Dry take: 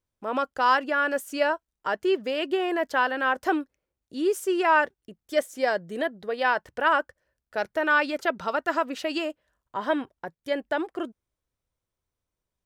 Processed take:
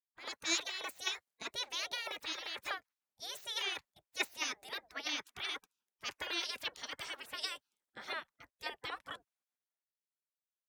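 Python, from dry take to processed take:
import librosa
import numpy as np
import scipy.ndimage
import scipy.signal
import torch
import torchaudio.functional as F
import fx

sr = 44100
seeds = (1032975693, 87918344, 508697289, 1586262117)

y = fx.speed_glide(x, sr, from_pct=134, to_pct=103)
y = fx.spec_gate(y, sr, threshold_db=-20, keep='weak')
y = fx.band_widen(y, sr, depth_pct=40)
y = F.gain(torch.from_numpy(y), 1.0).numpy()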